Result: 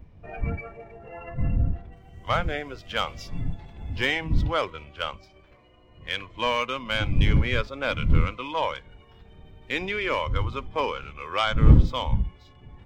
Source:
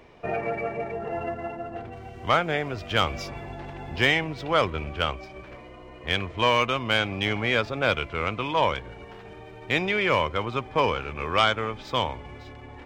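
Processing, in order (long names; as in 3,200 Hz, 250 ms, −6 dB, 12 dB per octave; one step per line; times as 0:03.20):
wind on the microphone 92 Hz −22 dBFS
noise reduction from a noise print of the clip's start 10 dB
level −3.5 dB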